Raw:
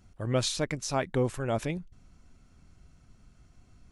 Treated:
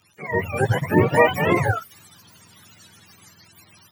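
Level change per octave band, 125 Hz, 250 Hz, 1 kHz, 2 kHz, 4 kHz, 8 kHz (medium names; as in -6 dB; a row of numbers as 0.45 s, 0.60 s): +9.0 dB, +9.5 dB, +13.5 dB, +16.5 dB, 0.0 dB, -4.5 dB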